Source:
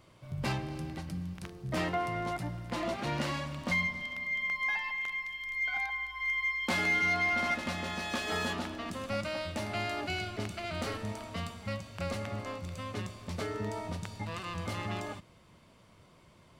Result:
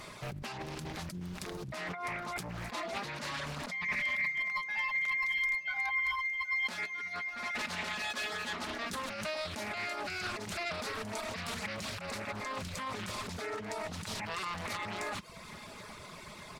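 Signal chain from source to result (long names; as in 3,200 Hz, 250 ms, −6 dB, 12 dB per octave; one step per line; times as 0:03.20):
compressor whose output falls as the input rises −42 dBFS, ratio −1
comb filter 4.8 ms, depth 36%
brickwall limiter −35.5 dBFS, peak gain reduction 14.5 dB
Butterworth band-reject 3,000 Hz, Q 7.1
tilt shelving filter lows −5 dB, about 740 Hz
repeating echo 773 ms, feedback 52%, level −18 dB
reverb reduction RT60 0.7 s
highs frequency-modulated by the lows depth 0.51 ms
level +7.5 dB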